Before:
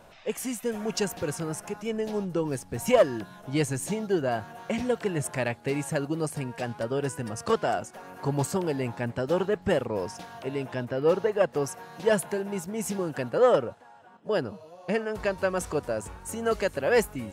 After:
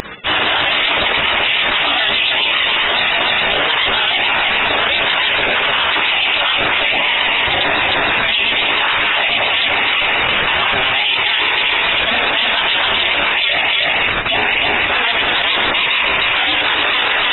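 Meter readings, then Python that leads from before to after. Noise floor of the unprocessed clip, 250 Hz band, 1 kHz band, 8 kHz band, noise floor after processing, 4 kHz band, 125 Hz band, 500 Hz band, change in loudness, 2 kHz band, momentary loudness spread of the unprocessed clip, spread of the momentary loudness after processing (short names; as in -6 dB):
-51 dBFS, +0.5 dB, +16.5 dB, under -20 dB, -17 dBFS, +30.5 dB, -1.0 dB, +2.0 dB, +15.5 dB, +24.5 dB, 9 LU, 1 LU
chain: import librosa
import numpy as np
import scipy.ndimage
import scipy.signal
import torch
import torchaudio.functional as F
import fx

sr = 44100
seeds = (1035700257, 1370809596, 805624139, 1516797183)

p1 = fx.self_delay(x, sr, depth_ms=0.075)
p2 = fx.room_shoebox(p1, sr, seeds[0], volume_m3=47.0, walls='mixed', distance_m=2.4)
p3 = fx.quant_dither(p2, sr, seeds[1], bits=6, dither='triangular')
p4 = p2 + (p3 * librosa.db_to_amplitude(-9.0))
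p5 = scipy.signal.sosfilt(scipy.signal.butter(2, 55.0, 'highpass', fs=sr, output='sos'), p4)
p6 = fx.spec_gate(p5, sr, threshold_db=-25, keep='weak')
p7 = p6 + 10.0 ** (-11.0 / 20.0) * np.pad(p6, (int(311 * sr / 1000.0), 0))[:len(p6)]
p8 = fx.freq_invert(p7, sr, carrier_hz=3700)
p9 = fx.high_shelf(p8, sr, hz=2300.0, db=11.0)
p10 = fx.vibrato(p9, sr, rate_hz=7.1, depth_cents=49.0)
p11 = fx.dynamic_eq(p10, sr, hz=530.0, q=1.2, threshold_db=-51.0, ratio=4.0, max_db=7)
p12 = fx.tremolo_random(p11, sr, seeds[2], hz=3.5, depth_pct=55)
p13 = fx.env_flatten(p12, sr, amount_pct=100)
y = p13 * librosa.db_to_amplitude(-3.5)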